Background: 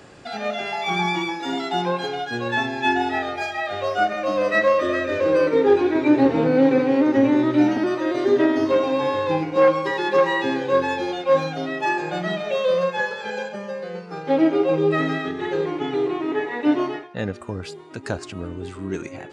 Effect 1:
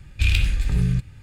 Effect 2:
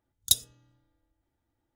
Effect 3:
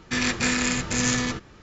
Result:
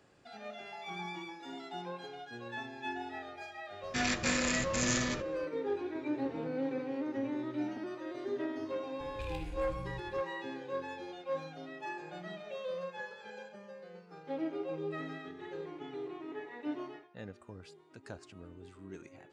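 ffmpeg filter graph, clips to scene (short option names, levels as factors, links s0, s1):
-filter_complex "[0:a]volume=0.112[s0];[1:a]acompressor=threshold=0.0355:ratio=6:attack=3.2:release=140:knee=1:detection=peak[s1];[3:a]atrim=end=1.62,asetpts=PTS-STARTPTS,volume=0.398,afade=t=in:d=0.004:c=hsin,afade=t=out:st=1.616:d=0.004:c=hsin,adelay=3830[s2];[s1]atrim=end=1.22,asetpts=PTS-STARTPTS,volume=0.299,afade=t=in:d=0.004:c=hsin,afade=t=out:st=1.216:d=0.004:c=hsin,adelay=9000[s3];[s0][s2][s3]amix=inputs=3:normalize=0"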